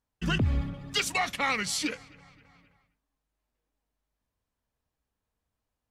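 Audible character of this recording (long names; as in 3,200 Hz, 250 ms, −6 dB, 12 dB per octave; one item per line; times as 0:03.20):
background noise floor −86 dBFS
spectral slope −3.5 dB per octave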